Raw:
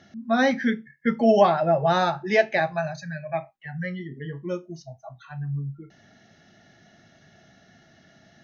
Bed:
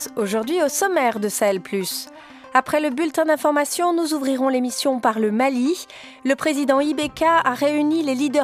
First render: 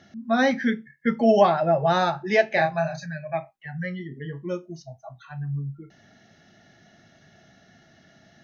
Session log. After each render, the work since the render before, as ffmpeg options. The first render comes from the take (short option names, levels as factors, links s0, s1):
-filter_complex "[0:a]asettb=1/sr,asplit=3[s0][s1][s2];[s0]atrim=end=2.484[s3];[s1]atrim=start=2.48:end=3.06,asetpts=PTS-STARTPTS,afade=t=in:d=0.004:c=qsin,afade=t=out:st=0.576:d=0.004:c=qsin,asplit=2[s4][s5];[s5]adelay=30,volume=0.562[s6];[s4][s6]amix=inputs=2:normalize=0,atrim=end_sample=25578[s7];[s2]atrim=start=3.056[s8];[s3][s7]acrossfade=d=0.004:c1=hsin:c2=qsin[s9];[s9][s8]acrossfade=d=0.004:c1=qsin:c2=hsin"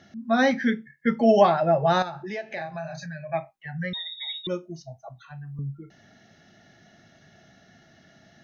-filter_complex "[0:a]asettb=1/sr,asplit=3[s0][s1][s2];[s0]atrim=end=2.024[s3];[s1]atrim=start=2.02:end=3.31,asetpts=PTS-STARTPTS,afade=t=in:d=0.004:c=qsin,afade=t=out:st=1.286:d=0.004:c=qsin,acompressor=threshold=0.0224:ratio=3:attack=3.2:release=140:knee=1:detection=peak[s4];[s2]atrim=start=3.306[s5];[s3][s4]acrossfade=d=0.004:c1=hsin:c2=qsin[s6];[s6][s5]acrossfade=d=0.004:c1=qsin:c2=hsin,asettb=1/sr,asplit=3[s7][s8][s9];[s7]atrim=end=3.934[s10];[s8]atrim=start=3.93:end=4.47,asetpts=PTS-STARTPTS,afade=t=in:d=0.004:c=qsin,afade=t=out:st=0.536:d=0.004:c=qsin,lowpass=f=3300:t=q:w=0.5098,lowpass=f=3300:t=q:w=0.6013,lowpass=f=3300:t=q:w=0.9,lowpass=f=3300:t=q:w=2.563,afreqshift=-3900[s11];[s9]atrim=start=4.466[s12];[s10][s11]acrossfade=d=0.004:c1=hsin:c2=qsin[s13];[s13][s12]acrossfade=d=0.004:c1=qsin:c2=hsin,asettb=1/sr,asplit=3[s14][s15][s16];[s14]atrim=end=5.084[s17];[s15]atrim=start=5.08:end=5.59,asetpts=PTS-STARTPTS,afade=t=in:d=0.004:c=qsin,afade=t=out:st=0.506:d=0.004:c=qsin,acrossover=split=680|1600[s18][s19][s20];[s18]acompressor=threshold=0.0112:ratio=4[s21];[s19]acompressor=threshold=0.002:ratio=4[s22];[s20]acompressor=threshold=0.00282:ratio=4[s23];[s21][s22][s23]amix=inputs=3:normalize=0[s24];[s16]atrim=start=5.586[s25];[s17][s24]acrossfade=d=0.004:c1=hsin:c2=qsin[s26];[s26][s25]acrossfade=d=0.004:c1=qsin:c2=hsin"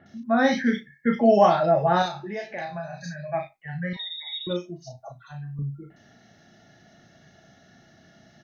-filter_complex "[0:a]asplit=2[s0][s1];[s1]adelay=34,volume=0.531[s2];[s0][s2]amix=inputs=2:normalize=0,acrossover=split=2400[s3][s4];[s4]adelay=60[s5];[s3][s5]amix=inputs=2:normalize=0"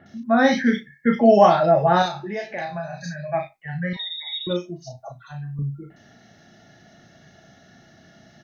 -af "volume=1.5"